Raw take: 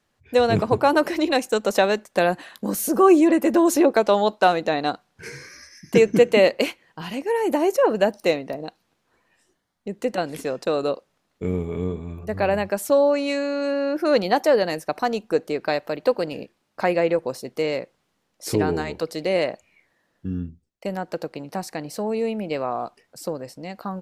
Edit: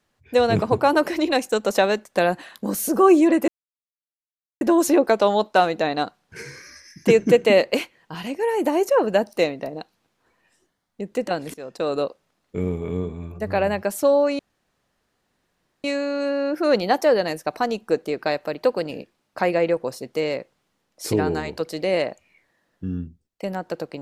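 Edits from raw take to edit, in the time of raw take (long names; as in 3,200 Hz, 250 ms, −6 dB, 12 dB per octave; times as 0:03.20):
0:03.48: splice in silence 1.13 s
0:10.41–0:10.81: fade in, from −15.5 dB
0:13.26: splice in room tone 1.45 s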